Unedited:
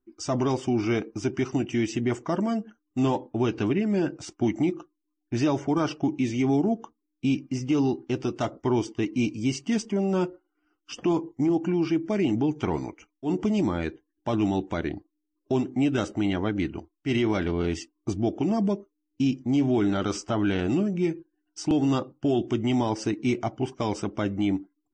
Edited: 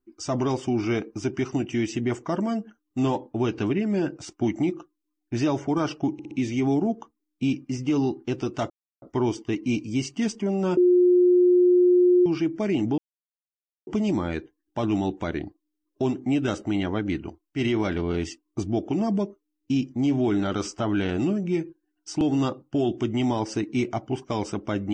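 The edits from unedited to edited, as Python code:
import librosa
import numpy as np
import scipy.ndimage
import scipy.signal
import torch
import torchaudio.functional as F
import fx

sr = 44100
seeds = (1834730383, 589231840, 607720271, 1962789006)

y = fx.edit(x, sr, fx.stutter(start_s=6.13, slice_s=0.06, count=4),
    fx.insert_silence(at_s=8.52, length_s=0.32),
    fx.bleep(start_s=10.27, length_s=1.49, hz=358.0, db=-14.0),
    fx.silence(start_s=12.48, length_s=0.89), tone=tone)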